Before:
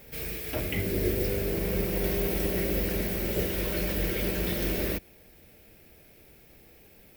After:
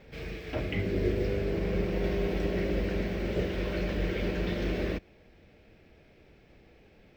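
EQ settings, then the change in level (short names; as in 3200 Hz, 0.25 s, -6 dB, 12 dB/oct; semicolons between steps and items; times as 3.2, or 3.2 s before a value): air absorption 180 m; 0.0 dB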